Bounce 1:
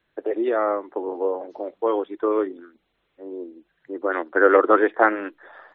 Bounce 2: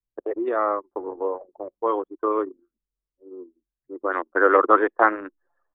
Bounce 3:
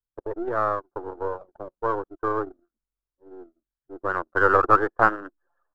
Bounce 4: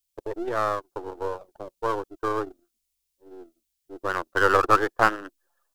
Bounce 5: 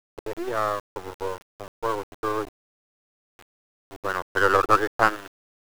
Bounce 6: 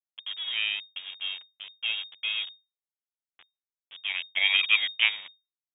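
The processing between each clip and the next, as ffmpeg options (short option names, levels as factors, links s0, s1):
-af "anlmdn=158,equalizer=f=1100:w=2.6:g=8,volume=0.708"
-af "aeval=exprs='if(lt(val(0),0),0.447*val(0),val(0))':c=same,highshelf=f=1800:t=q:w=3:g=-6,volume=0.841"
-af "aexciter=amount=4.1:drive=7.1:freq=2100,volume=0.891"
-af "aeval=exprs='val(0)*gte(abs(val(0)),0.0168)':c=same"
-af "lowpass=f=3100:t=q:w=0.5098,lowpass=f=3100:t=q:w=0.6013,lowpass=f=3100:t=q:w=0.9,lowpass=f=3100:t=q:w=2.563,afreqshift=-3700,volume=0.631"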